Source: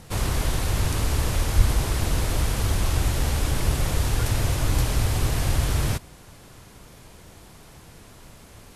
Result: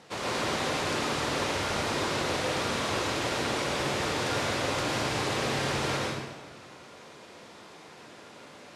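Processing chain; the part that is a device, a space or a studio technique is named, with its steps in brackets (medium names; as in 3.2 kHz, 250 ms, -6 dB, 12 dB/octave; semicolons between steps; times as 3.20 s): supermarket ceiling speaker (band-pass 300–5200 Hz; reverberation RT60 1.2 s, pre-delay 98 ms, DRR -4 dB); trim -2 dB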